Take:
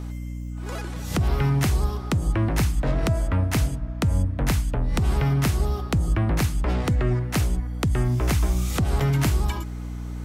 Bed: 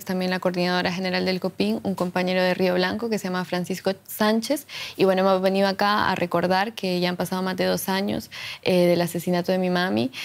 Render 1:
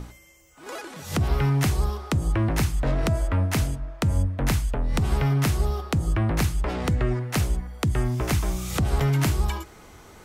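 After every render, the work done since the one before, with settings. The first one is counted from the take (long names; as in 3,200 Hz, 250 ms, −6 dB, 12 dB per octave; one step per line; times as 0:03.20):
mains-hum notches 60/120/180/240/300/360 Hz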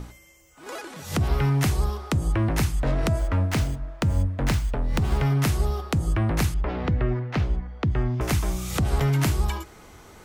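0:03.19–0:05.24: windowed peak hold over 3 samples
0:06.54–0:08.21: high-frequency loss of the air 240 metres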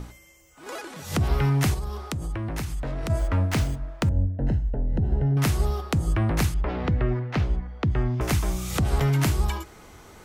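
0:01.74–0:03.10: downward compressor 4 to 1, threshold −27 dBFS
0:04.09–0:05.37: moving average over 38 samples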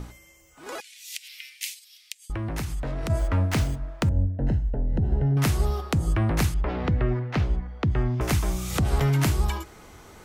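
0:00.80–0:02.30: Butterworth high-pass 2,200 Hz 48 dB per octave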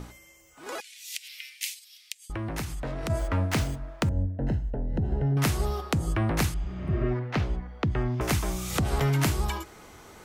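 0:06.62–0:07.03: healed spectral selection 200–8,200 Hz both
low-shelf EQ 130 Hz −6 dB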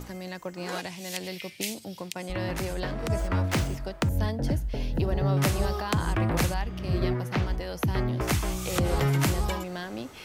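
mix in bed −13.5 dB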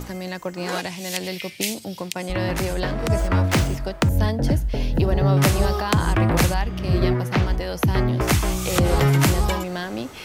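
level +7 dB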